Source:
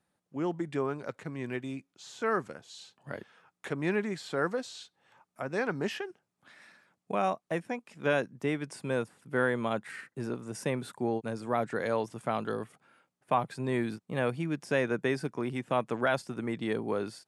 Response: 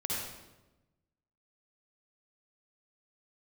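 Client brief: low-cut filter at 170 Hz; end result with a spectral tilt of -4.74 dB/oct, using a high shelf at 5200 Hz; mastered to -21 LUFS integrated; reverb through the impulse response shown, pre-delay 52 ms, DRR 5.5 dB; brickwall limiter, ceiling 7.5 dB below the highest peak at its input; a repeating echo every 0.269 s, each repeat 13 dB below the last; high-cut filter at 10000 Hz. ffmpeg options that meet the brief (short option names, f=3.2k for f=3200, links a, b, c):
-filter_complex "[0:a]highpass=170,lowpass=10k,highshelf=f=5.2k:g=9,alimiter=limit=-21.5dB:level=0:latency=1,aecho=1:1:269|538|807:0.224|0.0493|0.0108,asplit=2[a][b];[1:a]atrim=start_sample=2205,adelay=52[c];[b][c]afir=irnorm=-1:irlink=0,volume=-10dB[d];[a][d]amix=inputs=2:normalize=0,volume=13dB"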